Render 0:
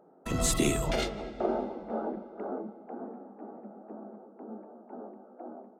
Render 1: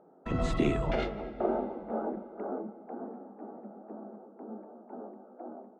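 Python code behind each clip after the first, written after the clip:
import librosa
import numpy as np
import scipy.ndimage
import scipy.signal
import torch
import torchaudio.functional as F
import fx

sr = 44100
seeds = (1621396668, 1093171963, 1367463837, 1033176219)

y = scipy.signal.sosfilt(scipy.signal.butter(2, 2200.0, 'lowpass', fs=sr, output='sos'), x)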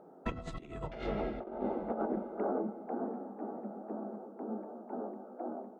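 y = fx.over_compress(x, sr, threshold_db=-35.0, ratio=-0.5)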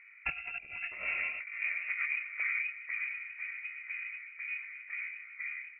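y = fx.freq_invert(x, sr, carrier_hz=2700)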